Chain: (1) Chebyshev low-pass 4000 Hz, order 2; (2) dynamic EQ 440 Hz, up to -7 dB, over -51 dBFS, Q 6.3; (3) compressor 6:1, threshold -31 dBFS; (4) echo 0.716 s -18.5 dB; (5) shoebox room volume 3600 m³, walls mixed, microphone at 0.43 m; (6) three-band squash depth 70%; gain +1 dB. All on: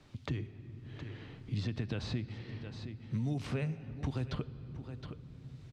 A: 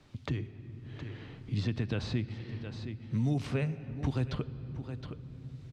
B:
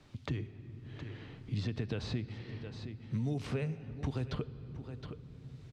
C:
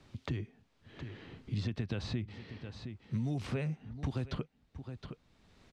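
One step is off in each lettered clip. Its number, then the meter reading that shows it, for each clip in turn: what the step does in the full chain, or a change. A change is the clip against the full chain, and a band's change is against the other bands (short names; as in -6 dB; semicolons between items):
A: 3, mean gain reduction 2.0 dB; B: 2, 500 Hz band +2.5 dB; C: 5, momentary loudness spread change +1 LU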